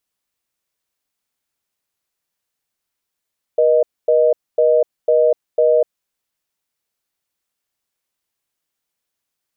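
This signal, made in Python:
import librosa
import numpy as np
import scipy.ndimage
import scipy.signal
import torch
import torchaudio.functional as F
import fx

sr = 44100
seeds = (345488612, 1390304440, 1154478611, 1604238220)

y = fx.call_progress(sr, length_s=2.5, kind='reorder tone', level_db=-13.0)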